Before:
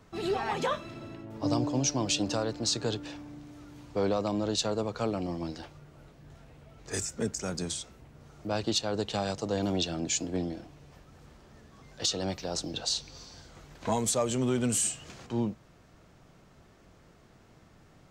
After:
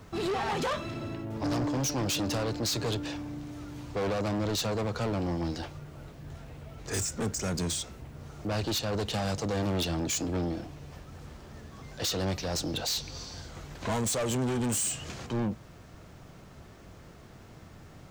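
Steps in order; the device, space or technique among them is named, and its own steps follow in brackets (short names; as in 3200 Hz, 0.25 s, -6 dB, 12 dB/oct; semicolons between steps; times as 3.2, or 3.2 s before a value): open-reel tape (soft clip -34 dBFS, distortion -7 dB; bell 85 Hz +4.5 dB 1.06 oct; white noise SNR 41 dB); gain +6.5 dB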